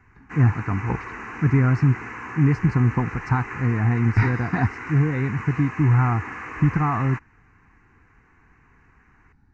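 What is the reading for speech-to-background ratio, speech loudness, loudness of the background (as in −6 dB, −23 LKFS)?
12.5 dB, −22.0 LKFS, −34.5 LKFS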